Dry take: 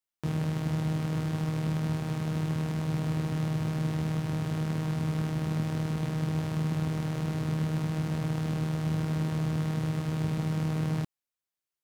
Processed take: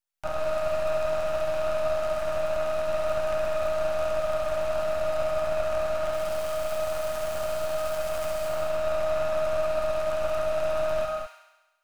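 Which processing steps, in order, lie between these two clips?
0:06.13–0:08.49: high-shelf EQ 3,300 Hz +10.5 dB
brickwall limiter −20 dBFS, peak gain reduction 4.5 dB
frequency shifter +470 Hz
half-wave rectification
delay with a high-pass on its return 68 ms, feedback 66%, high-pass 1,500 Hz, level −4 dB
reverb whose tail is shaped and stops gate 230 ms rising, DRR 4 dB
level +4 dB

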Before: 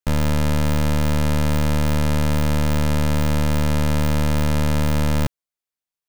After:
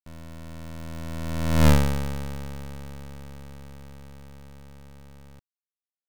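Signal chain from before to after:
source passing by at 0:01.68, 26 m/s, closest 1.7 metres
level +5 dB

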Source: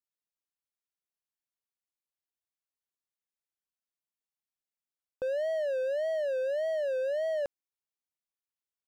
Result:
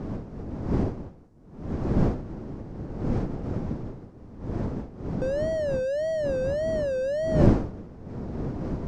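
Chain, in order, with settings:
wind on the microphone 270 Hz −32 dBFS
high shelf with overshoot 4,300 Hz +7.5 dB, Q 1.5
in parallel at +1 dB: downward compressor, threshold −41 dBFS, peak gain reduction 24 dB
on the sum: high-frequency loss of the air 64 metres
level +1.5 dB

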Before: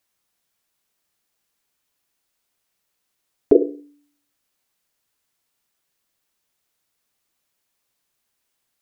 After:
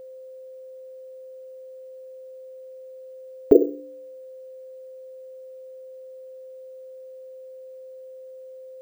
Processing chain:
steady tone 520 Hz −39 dBFS
bad sample-rate conversion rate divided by 2×, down none, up hold

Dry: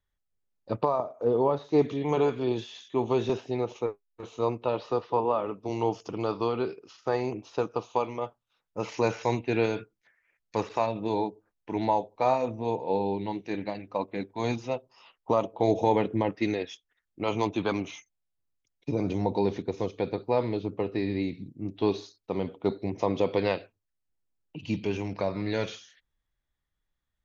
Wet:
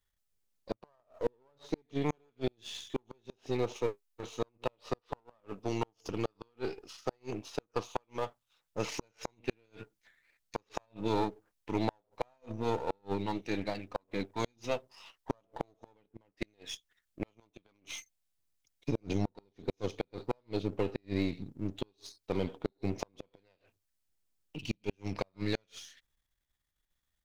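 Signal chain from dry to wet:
gain on one half-wave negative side −7 dB
high-shelf EQ 2,600 Hz +8 dB
gate with flip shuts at −18 dBFS, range −41 dB

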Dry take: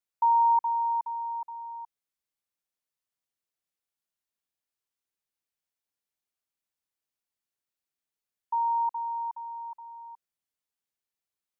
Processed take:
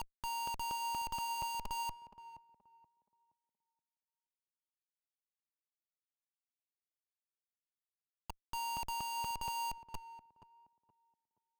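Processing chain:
reversed piece by piece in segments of 237 ms
comparator with hysteresis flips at −38.5 dBFS
tape delay 474 ms, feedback 33%, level −10 dB, low-pass 1,000 Hz
level −5 dB

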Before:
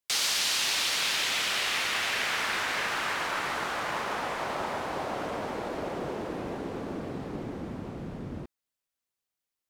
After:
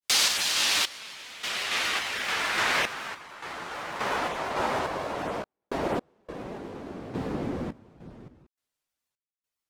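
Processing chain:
sample-and-hold tremolo, depth 100%
granular cloud 126 ms, spray 11 ms, pitch spread up and down by 0 semitones
level +8 dB

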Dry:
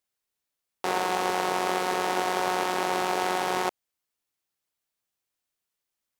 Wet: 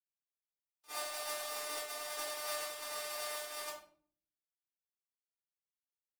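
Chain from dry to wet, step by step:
noise gate −24 dBFS, range −29 dB
phase-vocoder pitch shift with formants kept +8.5 semitones
first-order pre-emphasis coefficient 0.97
rectangular room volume 550 cubic metres, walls furnished, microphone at 3.8 metres
level +1 dB

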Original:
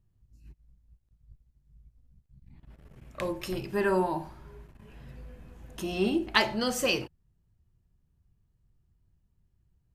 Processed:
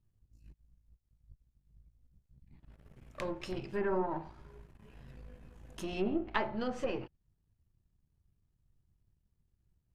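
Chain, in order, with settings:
gain on one half-wave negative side −7 dB
treble cut that deepens with the level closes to 1,300 Hz, closed at −25.5 dBFS
level −3 dB

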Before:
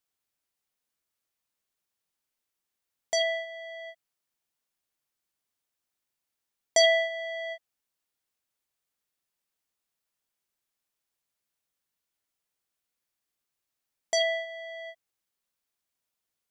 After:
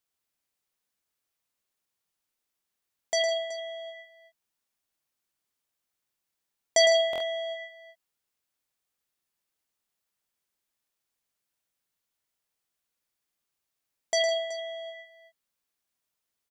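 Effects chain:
on a send: multi-tap delay 108/156/375 ms −7.5/−13/−15 dB
on the sum: buffer that repeats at 0:07.11, samples 1,024, times 3

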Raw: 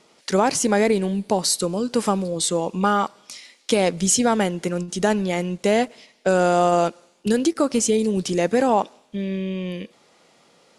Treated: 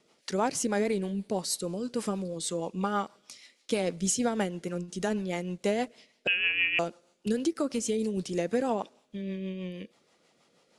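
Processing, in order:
0:06.27–0:06.79: voice inversion scrambler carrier 3,100 Hz
rotating-speaker cabinet horn 6.3 Hz
level −7.5 dB

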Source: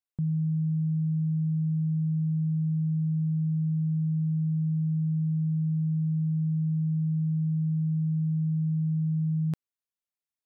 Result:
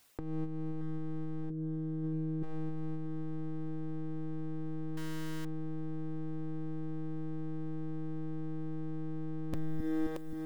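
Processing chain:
wavefolder on the positive side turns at −33.5 dBFS
0:01.50–0:02.43: parametric band 220 Hz +11.5 dB 2.2 octaves
brickwall limiter −32.5 dBFS, peak gain reduction 15.5 dB
echo with a time of its own for lows and highs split 300 Hz, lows 264 ms, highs 626 ms, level −13 dB
reverb reduction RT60 1 s
compressor whose output falls as the input rises −48 dBFS, ratio −0.5
0:04.97–0:05.45: bit-depth reduction 10 bits, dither none
level +17 dB

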